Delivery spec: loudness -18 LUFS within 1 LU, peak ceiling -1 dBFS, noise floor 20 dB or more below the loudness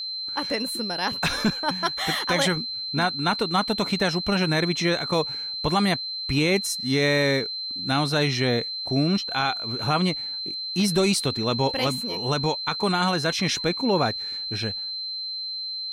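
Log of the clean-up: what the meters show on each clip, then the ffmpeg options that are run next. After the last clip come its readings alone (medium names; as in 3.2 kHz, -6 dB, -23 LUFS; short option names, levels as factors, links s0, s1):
steady tone 4.1 kHz; tone level -29 dBFS; loudness -24.0 LUFS; peak level -11.0 dBFS; loudness target -18.0 LUFS
-> -af "bandreject=f=4100:w=30"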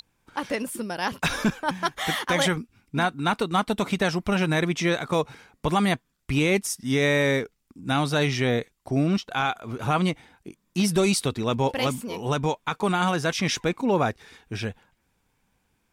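steady tone not found; loudness -25.5 LUFS; peak level -12.0 dBFS; loudness target -18.0 LUFS
-> -af "volume=2.37"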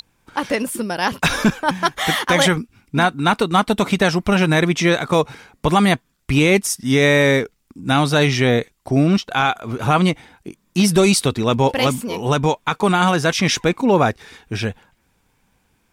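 loudness -18.0 LUFS; peak level -4.5 dBFS; noise floor -64 dBFS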